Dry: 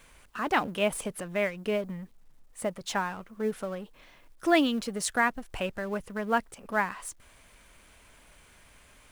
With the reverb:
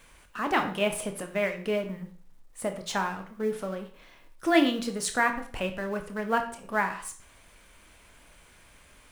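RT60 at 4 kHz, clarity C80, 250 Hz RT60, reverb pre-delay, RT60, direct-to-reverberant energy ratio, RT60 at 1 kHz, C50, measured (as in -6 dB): 0.45 s, 14.0 dB, 0.50 s, 17 ms, 0.45 s, 5.5 dB, 0.45 s, 10.0 dB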